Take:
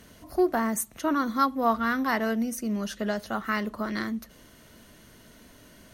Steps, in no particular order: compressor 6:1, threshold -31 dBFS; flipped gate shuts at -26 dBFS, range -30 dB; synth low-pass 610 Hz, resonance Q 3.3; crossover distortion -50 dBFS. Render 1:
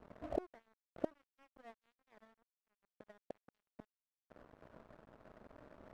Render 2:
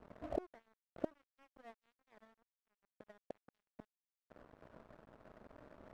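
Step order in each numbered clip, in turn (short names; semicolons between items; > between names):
flipped gate > compressor > synth low-pass > crossover distortion; flipped gate > synth low-pass > crossover distortion > compressor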